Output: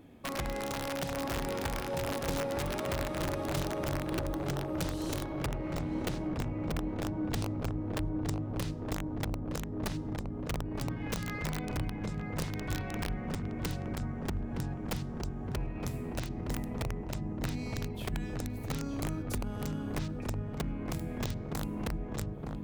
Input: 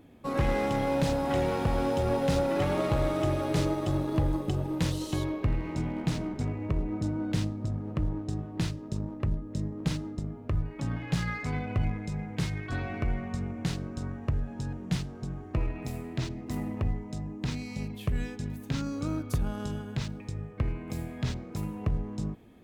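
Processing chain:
downward compressor 3 to 1, threshold −35 dBFS, peak gain reduction 10.5 dB
wrap-around overflow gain 28 dB
feedback echo with a low-pass in the loop 916 ms, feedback 74%, low-pass 1,200 Hz, level −3.5 dB

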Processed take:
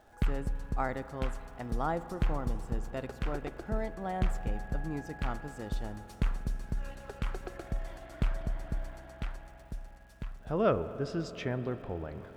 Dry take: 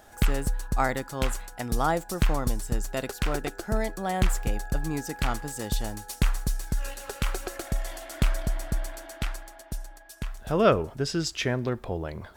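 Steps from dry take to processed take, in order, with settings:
low-pass filter 1,500 Hz 6 dB per octave
surface crackle 290 per second −52 dBFS
on a send: convolution reverb RT60 5.3 s, pre-delay 47 ms, DRR 12 dB
on the sum: level −6 dB

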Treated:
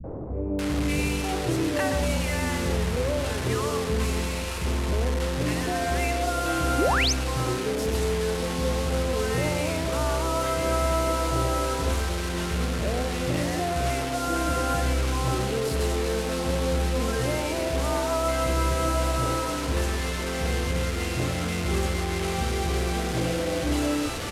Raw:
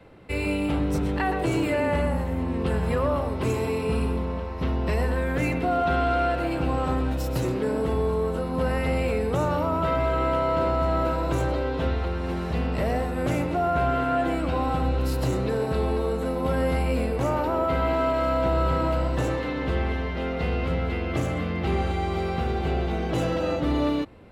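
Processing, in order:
linear delta modulator 64 kbit/s, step −25.5 dBFS
three-band delay without the direct sound lows, mids, highs 40/590 ms, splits 190/770 Hz
sound drawn into the spectrogram rise, 0:06.78–0:07.13, 250–6,900 Hz −24 dBFS

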